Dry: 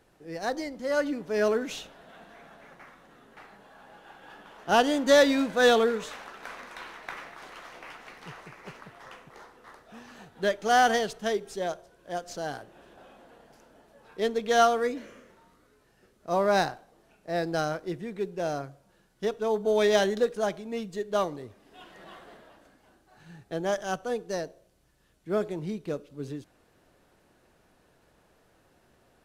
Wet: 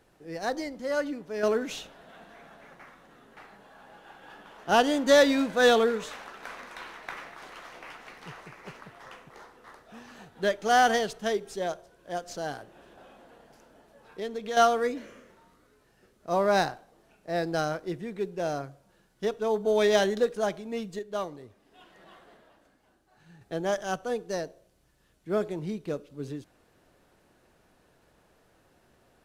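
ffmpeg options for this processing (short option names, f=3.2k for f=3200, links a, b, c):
-filter_complex "[0:a]asettb=1/sr,asplit=3[a][b][c];[a]atrim=end=12.524[d];[b]atrim=start=12.52:end=14.57,asetpts=PTS-STARTPTS,afade=t=in:d=0.004:c=qsin,afade=t=out:st=2.046:d=0.004:c=qsin,acompressor=threshold=-35dB:ratio=2:attack=3.2:release=140:knee=1:detection=peak[e];[c]atrim=start=14.566[f];[d][e]acrossfade=d=0.004:c1=hsin:c2=qsin[g];[g][f]acrossfade=d=0.004:c1=qsin:c2=hsin,asplit=4[h][i][j][k];[h]atrim=end=1.43,asetpts=PTS-STARTPTS,afade=t=out:st=0.69:d=0.74:silence=0.446684[l];[i]atrim=start=1.43:end=20.992,asetpts=PTS-STARTPTS,afade=t=in:d=0.004:c=hsin:silence=0.446684[m];[j]atrim=start=20.988:end=23.412,asetpts=PTS-STARTPTS,volume=-5.5dB[n];[k]atrim=start=23.408[o];[l][m]concat=n=2:v=0:a=1[p];[p][n]acrossfade=d=0.004:c1=hsin:c2=hsin[q];[q][o]acrossfade=d=0.004:c1=hsin:c2=hsin"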